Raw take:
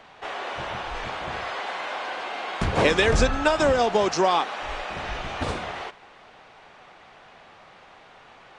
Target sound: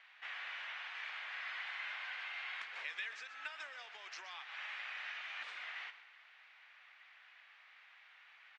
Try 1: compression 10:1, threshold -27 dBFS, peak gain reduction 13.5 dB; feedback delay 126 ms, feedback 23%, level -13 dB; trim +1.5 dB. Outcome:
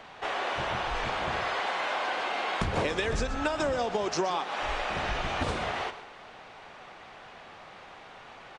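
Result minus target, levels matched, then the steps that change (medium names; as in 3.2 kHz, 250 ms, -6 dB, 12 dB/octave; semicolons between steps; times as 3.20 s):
2 kHz band -4.5 dB
add after compression: ladder band-pass 2.4 kHz, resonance 40%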